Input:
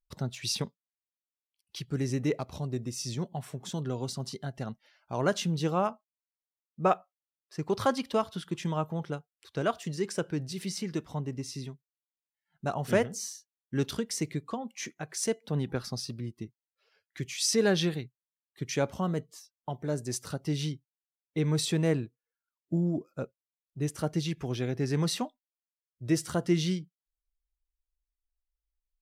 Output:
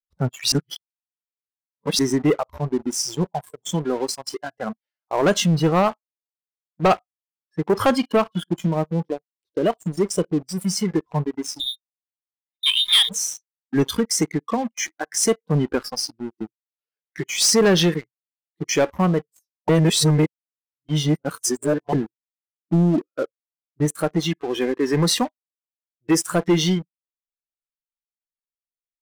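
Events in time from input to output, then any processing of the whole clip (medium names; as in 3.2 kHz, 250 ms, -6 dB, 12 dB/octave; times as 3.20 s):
0.52–1.99 s: reverse
8.44–10.77 s: peaking EQ 1.4 kHz -13 dB 1.2 oct
11.60–13.09 s: frequency inversion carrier 3.8 kHz
19.69–21.93 s: reverse
23.85–26.77 s: bass shelf 110 Hz -10.5 dB
whole clip: spectral noise reduction 25 dB; waveshaping leveller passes 3; trim +2 dB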